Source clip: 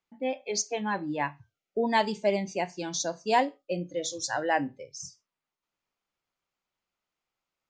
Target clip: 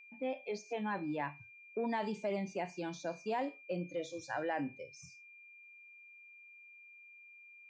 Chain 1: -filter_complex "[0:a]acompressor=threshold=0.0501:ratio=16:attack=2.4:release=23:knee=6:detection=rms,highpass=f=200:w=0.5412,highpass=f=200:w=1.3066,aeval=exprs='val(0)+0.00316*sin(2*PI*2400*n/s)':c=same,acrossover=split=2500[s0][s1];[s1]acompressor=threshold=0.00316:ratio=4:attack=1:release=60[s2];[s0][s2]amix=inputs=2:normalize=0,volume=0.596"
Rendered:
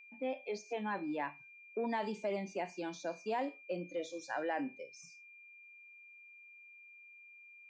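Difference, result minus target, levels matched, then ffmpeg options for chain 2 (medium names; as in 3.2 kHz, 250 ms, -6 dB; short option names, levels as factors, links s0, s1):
125 Hz band -5.0 dB
-filter_complex "[0:a]acompressor=threshold=0.0501:ratio=16:attack=2.4:release=23:knee=6:detection=rms,highpass=f=69:w=0.5412,highpass=f=69:w=1.3066,aeval=exprs='val(0)+0.00316*sin(2*PI*2400*n/s)':c=same,acrossover=split=2500[s0][s1];[s1]acompressor=threshold=0.00316:ratio=4:attack=1:release=60[s2];[s0][s2]amix=inputs=2:normalize=0,volume=0.596"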